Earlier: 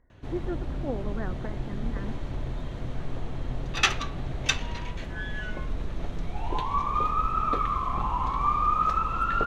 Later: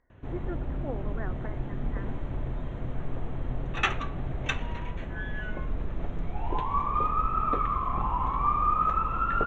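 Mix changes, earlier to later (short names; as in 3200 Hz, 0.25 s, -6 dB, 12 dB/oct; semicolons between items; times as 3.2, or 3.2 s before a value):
speech: add low shelf 410 Hz -9.5 dB; background: add running mean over 9 samples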